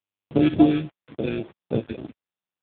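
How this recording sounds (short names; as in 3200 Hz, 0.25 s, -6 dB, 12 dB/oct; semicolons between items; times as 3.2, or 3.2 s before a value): aliases and images of a low sample rate 1000 Hz, jitter 0%; phasing stages 2, 3.6 Hz, lowest notch 780–1800 Hz; a quantiser's noise floor 8-bit, dither none; AMR-NB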